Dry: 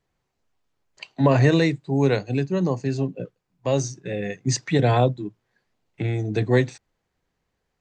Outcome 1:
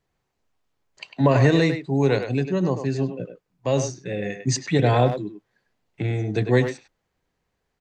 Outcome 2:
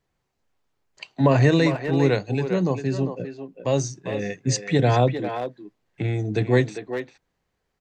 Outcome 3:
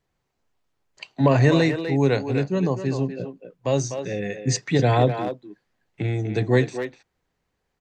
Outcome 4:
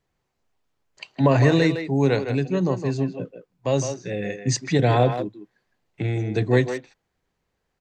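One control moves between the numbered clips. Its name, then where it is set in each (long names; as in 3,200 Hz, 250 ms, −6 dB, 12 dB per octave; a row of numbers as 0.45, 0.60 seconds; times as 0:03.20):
far-end echo of a speakerphone, delay time: 100, 400, 250, 160 milliseconds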